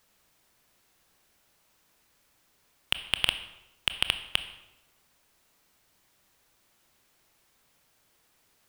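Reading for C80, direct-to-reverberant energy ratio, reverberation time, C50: 13.5 dB, 10.0 dB, 0.90 s, 12.0 dB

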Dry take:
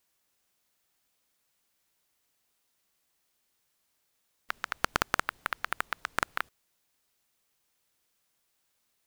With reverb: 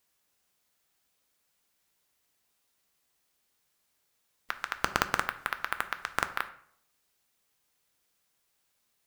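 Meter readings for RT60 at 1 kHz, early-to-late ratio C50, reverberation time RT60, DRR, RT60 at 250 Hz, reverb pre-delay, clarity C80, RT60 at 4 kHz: 0.65 s, 14.0 dB, 0.65 s, 9.0 dB, 0.75 s, 3 ms, 17.0 dB, 0.45 s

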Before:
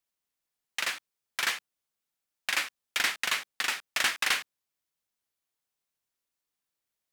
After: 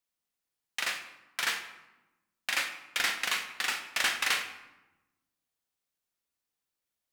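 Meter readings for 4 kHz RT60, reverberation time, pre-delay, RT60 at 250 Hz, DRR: 0.65 s, 1.0 s, 4 ms, 1.5 s, 5.0 dB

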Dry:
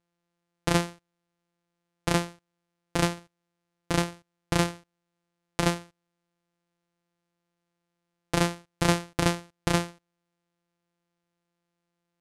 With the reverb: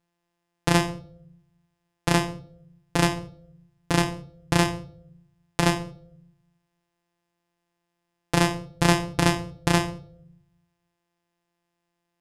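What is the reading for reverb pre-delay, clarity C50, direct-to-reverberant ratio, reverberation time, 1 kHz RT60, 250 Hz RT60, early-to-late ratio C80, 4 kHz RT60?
7 ms, 15.5 dB, 7.5 dB, 0.65 s, 0.50 s, 0.85 s, 19.0 dB, 0.45 s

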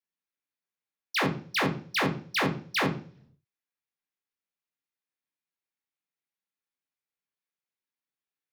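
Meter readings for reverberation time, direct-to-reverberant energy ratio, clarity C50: 0.45 s, -0.5 dB, 11.5 dB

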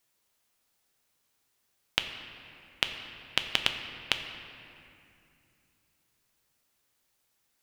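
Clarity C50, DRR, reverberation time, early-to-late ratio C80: 7.5 dB, 5.5 dB, 2.5 s, 8.0 dB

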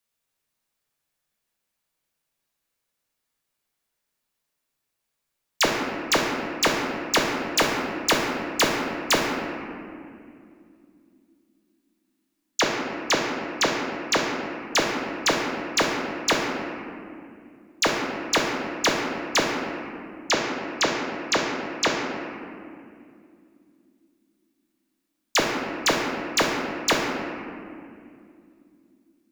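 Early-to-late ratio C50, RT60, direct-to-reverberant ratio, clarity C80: 1.0 dB, 2.4 s, -1.5 dB, 2.5 dB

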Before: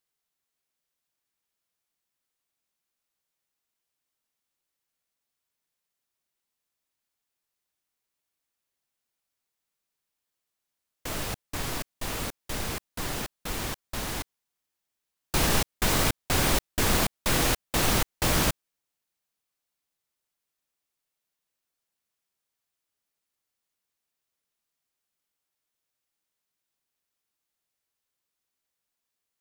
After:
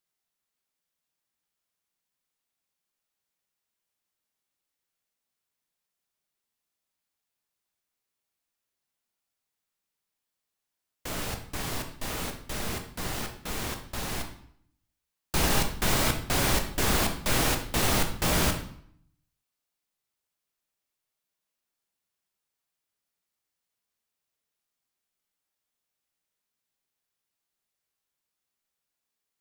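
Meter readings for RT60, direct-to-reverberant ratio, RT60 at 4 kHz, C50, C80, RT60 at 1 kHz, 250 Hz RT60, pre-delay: 0.65 s, 4.0 dB, 0.55 s, 8.5 dB, 12.5 dB, 0.65 s, 0.80 s, 5 ms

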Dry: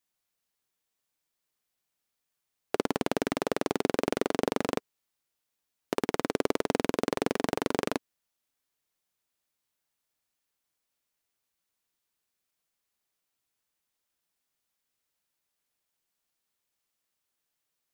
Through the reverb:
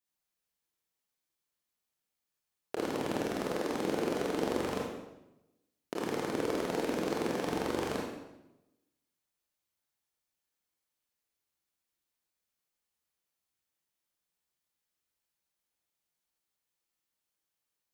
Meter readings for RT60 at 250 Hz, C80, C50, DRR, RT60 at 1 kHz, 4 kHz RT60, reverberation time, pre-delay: 1.1 s, 3.5 dB, 1.0 dB, -3.0 dB, 0.90 s, 0.80 s, 0.95 s, 23 ms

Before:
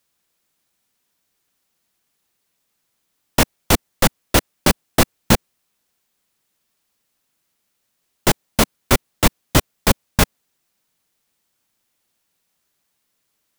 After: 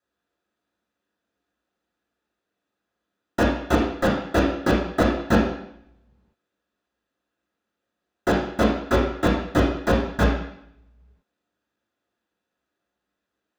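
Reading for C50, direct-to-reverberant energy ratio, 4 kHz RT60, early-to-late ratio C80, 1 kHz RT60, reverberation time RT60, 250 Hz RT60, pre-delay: 4.0 dB, -5.5 dB, 0.75 s, 7.0 dB, 0.70 s, 0.70 s, 0.80 s, 3 ms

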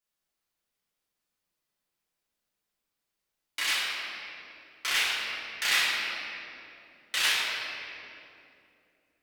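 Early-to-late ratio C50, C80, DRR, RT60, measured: -2.0 dB, -0.5 dB, -9.5 dB, 2.8 s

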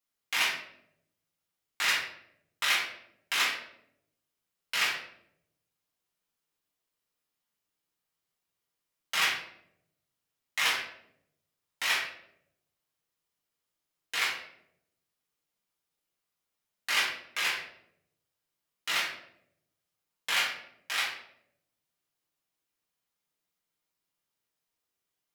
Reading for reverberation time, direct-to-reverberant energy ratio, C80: 0.75 s, -6.5 dB, 7.0 dB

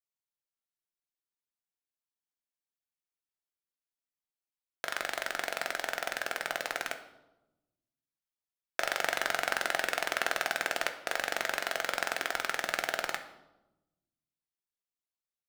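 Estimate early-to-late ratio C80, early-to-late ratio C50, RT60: 13.5 dB, 11.5 dB, 1.0 s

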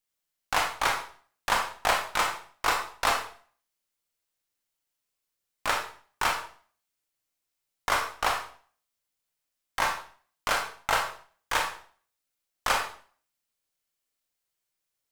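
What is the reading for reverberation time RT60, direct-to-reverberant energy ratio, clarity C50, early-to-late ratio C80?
0.45 s, 1.5 dB, 6.5 dB, 10.5 dB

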